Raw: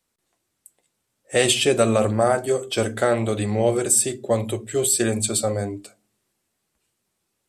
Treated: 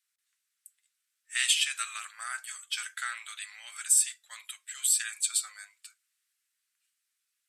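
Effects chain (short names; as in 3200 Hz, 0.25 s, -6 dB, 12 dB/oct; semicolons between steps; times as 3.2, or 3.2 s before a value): steep high-pass 1400 Hz 36 dB/oct; gain -4.5 dB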